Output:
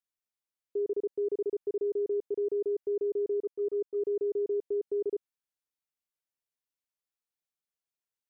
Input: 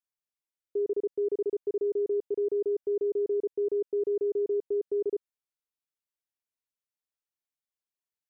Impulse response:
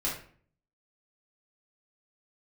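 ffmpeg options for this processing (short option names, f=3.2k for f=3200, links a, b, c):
-filter_complex "[0:a]asplit=3[a][b][c];[a]afade=t=out:st=3.36:d=0.02[d];[b]agate=range=-6dB:threshold=-29dB:ratio=16:detection=peak,afade=t=in:st=3.36:d=0.02,afade=t=out:st=4.02:d=0.02[e];[c]afade=t=in:st=4.02:d=0.02[f];[d][e][f]amix=inputs=3:normalize=0,volume=-2dB"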